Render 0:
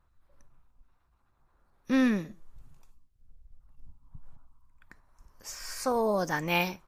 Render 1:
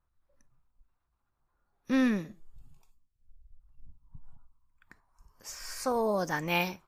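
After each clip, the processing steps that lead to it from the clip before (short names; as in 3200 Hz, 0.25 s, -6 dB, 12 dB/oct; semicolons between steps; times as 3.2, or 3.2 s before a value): spectral noise reduction 8 dB; gain -1.5 dB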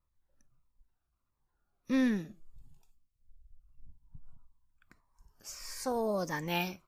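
cascading phaser falling 1.6 Hz; gain -2 dB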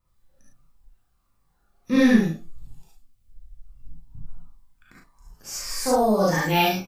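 doubler 37 ms -5 dB; non-linear reverb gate 90 ms rising, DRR -5 dB; gain +5.5 dB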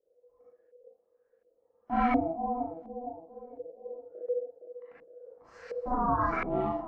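dark delay 0.462 s, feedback 35%, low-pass 440 Hz, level -8 dB; ring modulator 490 Hz; LFO low-pass saw up 1.4 Hz 460–2000 Hz; gain -8 dB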